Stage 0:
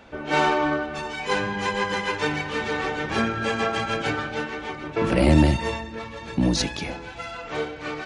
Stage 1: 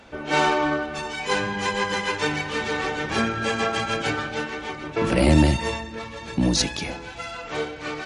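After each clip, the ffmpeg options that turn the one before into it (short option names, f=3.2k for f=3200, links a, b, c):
-af "equalizer=f=9.1k:w=0.43:g=5.5"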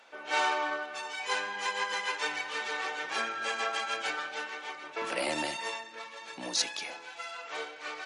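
-af "highpass=670,volume=-6dB"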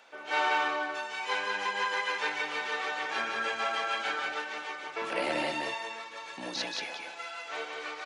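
-filter_complex "[0:a]acrossover=split=4300[a][b];[b]acompressor=threshold=-53dB:ratio=4:attack=1:release=60[c];[a][c]amix=inputs=2:normalize=0,aecho=1:1:178:0.708"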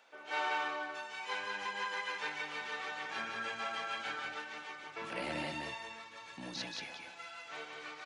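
-af "asubboost=boost=5:cutoff=190,volume=-7dB"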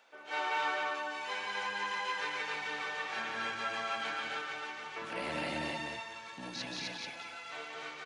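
-af "aecho=1:1:169.1|256.6:0.316|0.891"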